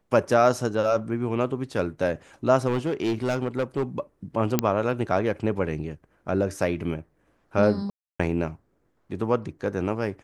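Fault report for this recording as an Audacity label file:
2.670000	3.830000	clipped -20 dBFS
4.590000	4.590000	pop -5 dBFS
7.900000	8.200000	gap 0.295 s

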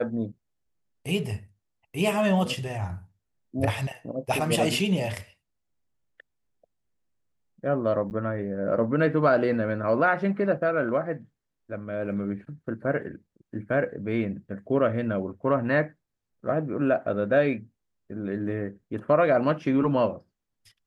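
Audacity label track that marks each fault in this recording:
8.100000	8.110000	gap 9.7 ms

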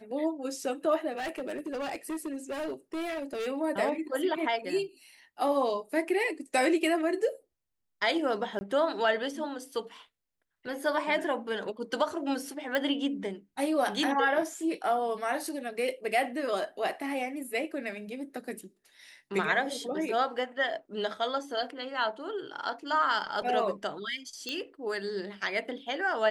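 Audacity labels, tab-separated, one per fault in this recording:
1.130000	3.480000	clipped -31 dBFS
8.590000	8.610000	gap 20 ms
12.750000	12.750000	pop -16 dBFS
24.490000	24.490000	pop -20 dBFS

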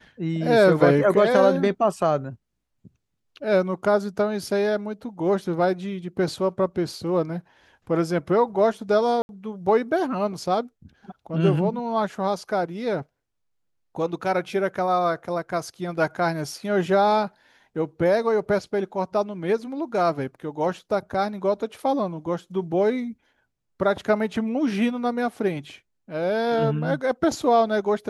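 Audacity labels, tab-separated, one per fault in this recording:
9.220000	9.290000	gap 71 ms

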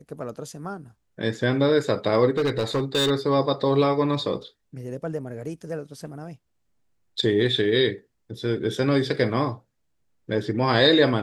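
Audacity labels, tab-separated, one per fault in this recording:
2.370000	3.110000	clipped -18.5 dBFS

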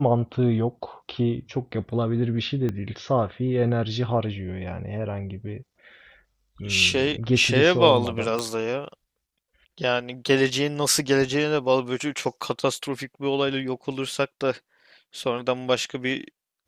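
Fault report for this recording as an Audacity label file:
2.690000	2.690000	pop -17 dBFS
8.390000	8.390000	pop -13 dBFS

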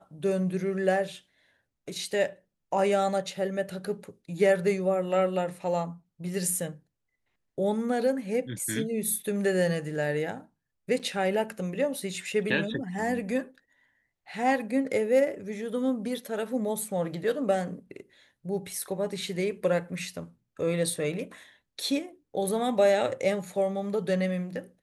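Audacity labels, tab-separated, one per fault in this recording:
10.990000	11.000000	gap 7.1 ms

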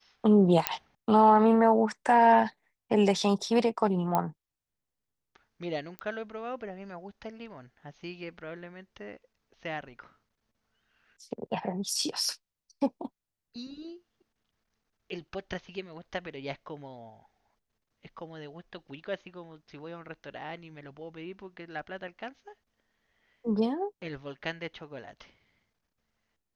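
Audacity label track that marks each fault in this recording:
0.670000	0.670000	pop -5 dBFS
4.150000	4.150000	pop -14 dBFS
5.990000	5.990000	pop -23 dBFS

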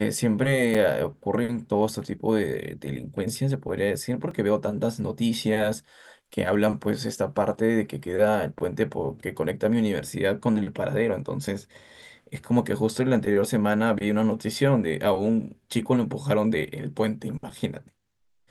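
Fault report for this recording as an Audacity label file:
0.740000	0.750000	gap 5.6 ms
4.310000	4.310000	gap 3.1 ms

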